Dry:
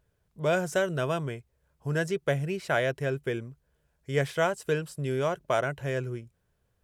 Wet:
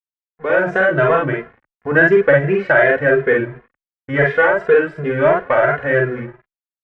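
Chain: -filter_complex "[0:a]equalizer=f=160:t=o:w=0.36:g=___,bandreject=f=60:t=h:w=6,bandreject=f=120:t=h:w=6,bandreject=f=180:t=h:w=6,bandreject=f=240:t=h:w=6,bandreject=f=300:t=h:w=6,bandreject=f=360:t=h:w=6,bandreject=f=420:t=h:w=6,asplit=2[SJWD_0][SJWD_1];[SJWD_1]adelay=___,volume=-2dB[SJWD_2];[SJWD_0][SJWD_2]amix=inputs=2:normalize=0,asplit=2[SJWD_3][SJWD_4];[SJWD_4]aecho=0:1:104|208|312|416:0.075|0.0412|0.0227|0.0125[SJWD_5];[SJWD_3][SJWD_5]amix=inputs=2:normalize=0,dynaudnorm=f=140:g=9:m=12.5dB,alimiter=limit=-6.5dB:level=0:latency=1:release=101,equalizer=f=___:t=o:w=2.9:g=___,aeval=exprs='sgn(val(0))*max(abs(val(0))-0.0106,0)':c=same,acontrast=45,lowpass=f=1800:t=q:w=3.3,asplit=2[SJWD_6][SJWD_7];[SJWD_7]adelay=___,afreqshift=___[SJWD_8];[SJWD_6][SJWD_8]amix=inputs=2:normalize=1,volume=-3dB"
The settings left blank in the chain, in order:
-7, 48, 430, 6, 2.5, 2.8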